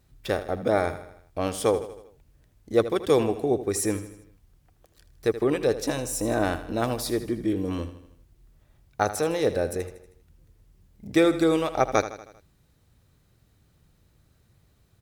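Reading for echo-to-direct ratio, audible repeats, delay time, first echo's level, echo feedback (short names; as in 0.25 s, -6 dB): -11.5 dB, 4, 79 ms, -13.0 dB, 53%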